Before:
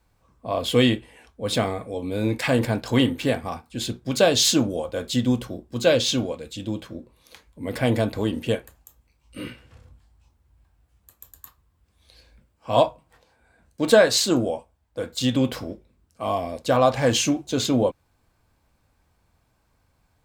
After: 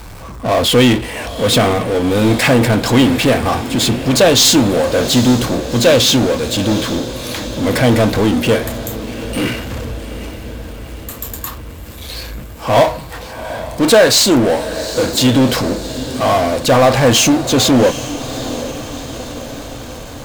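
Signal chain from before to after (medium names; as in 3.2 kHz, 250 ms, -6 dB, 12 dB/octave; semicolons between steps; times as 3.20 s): power-law waveshaper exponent 0.5; echo that smears into a reverb 787 ms, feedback 60%, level -13 dB; trim +2.5 dB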